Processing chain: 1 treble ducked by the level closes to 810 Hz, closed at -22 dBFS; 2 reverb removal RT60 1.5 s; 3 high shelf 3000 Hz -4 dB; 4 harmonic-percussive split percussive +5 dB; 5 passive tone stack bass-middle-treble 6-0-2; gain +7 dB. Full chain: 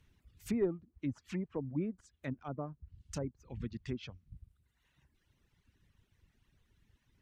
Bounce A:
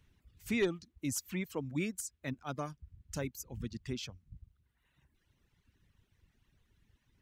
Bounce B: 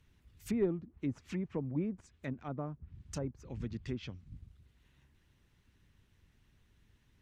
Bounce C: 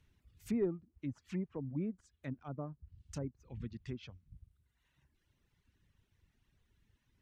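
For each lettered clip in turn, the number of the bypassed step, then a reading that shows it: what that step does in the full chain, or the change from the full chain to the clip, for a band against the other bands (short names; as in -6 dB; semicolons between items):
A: 1, 8 kHz band +11.0 dB; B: 2, momentary loudness spread change -2 LU; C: 4, 125 Hz band +3.5 dB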